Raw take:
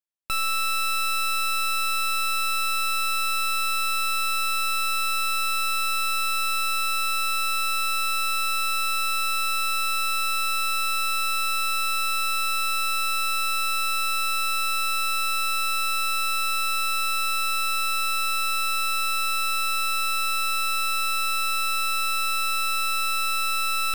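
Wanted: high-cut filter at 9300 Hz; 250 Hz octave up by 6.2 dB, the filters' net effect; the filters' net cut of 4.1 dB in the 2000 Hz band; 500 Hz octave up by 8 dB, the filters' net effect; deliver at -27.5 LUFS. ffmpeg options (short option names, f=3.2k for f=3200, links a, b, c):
-af "lowpass=9.3k,equalizer=f=250:t=o:g=5,equalizer=f=500:t=o:g=8,equalizer=f=2k:t=o:g=-7,volume=-1dB"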